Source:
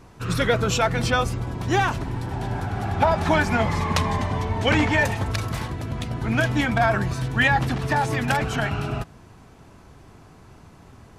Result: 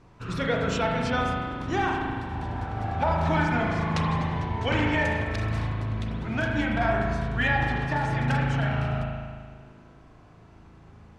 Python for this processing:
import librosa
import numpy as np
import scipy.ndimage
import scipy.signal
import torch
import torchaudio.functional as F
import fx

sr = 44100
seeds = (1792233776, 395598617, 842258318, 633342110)

y = fx.air_absorb(x, sr, metres=69.0)
y = fx.rev_spring(y, sr, rt60_s=1.8, pass_ms=(37,), chirp_ms=45, drr_db=-0.5)
y = F.gain(torch.from_numpy(y), -7.0).numpy()